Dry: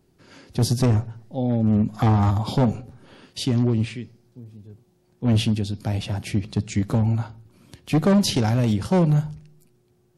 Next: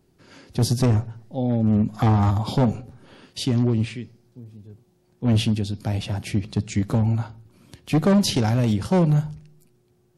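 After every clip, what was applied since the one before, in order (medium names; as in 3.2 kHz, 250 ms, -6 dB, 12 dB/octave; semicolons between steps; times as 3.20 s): no audible change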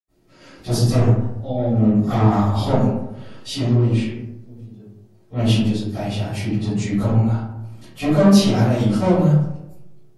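reverberation RT60 0.90 s, pre-delay 78 ms; trim -6 dB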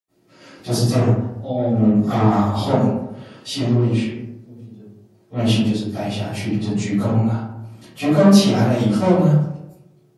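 high-pass 120 Hz 12 dB/octave; trim +1.5 dB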